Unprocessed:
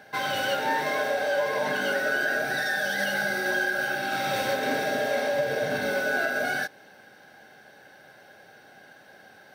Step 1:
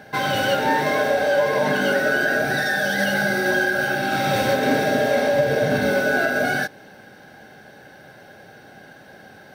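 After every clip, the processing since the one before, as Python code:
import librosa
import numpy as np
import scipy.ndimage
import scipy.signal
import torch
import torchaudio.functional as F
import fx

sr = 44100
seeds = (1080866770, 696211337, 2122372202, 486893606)

y = fx.low_shelf(x, sr, hz=330.0, db=10.5)
y = y * 10.0 ** (4.5 / 20.0)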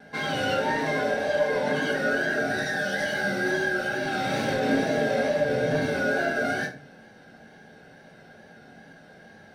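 y = scipy.signal.sosfilt(scipy.signal.butter(2, 10000.0, 'lowpass', fs=sr, output='sos'), x)
y = fx.wow_flutter(y, sr, seeds[0], rate_hz=2.1, depth_cents=43.0)
y = fx.room_shoebox(y, sr, seeds[1], volume_m3=280.0, walls='furnished', distance_m=1.7)
y = y * 10.0 ** (-8.5 / 20.0)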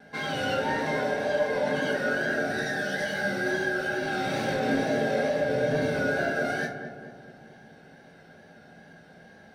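y = fx.echo_filtered(x, sr, ms=217, feedback_pct=58, hz=1200.0, wet_db=-7)
y = y * 10.0 ** (-2.5 / 20.0)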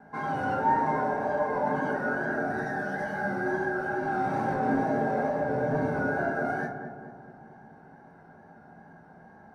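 y = fx.curve_eq(x, sr, hz=(380.0, 540.0, 920.0, 3400.0, 6300.0), db=(0, -6, 9, -22, -14))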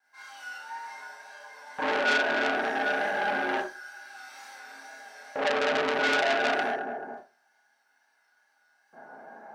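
y = fx.filter_lfo_highpass(x, sr, shape='square', hz=0.28, low_hz=450.0, high_hz=3700.0, q=0.94)
y = fx.rev_schroeder(y, sr, rt60_s=0.31, comb_ms=26, drr_db=-5.5)
y = fx.transformer_sat(y, sr, knee_hz=3600.0)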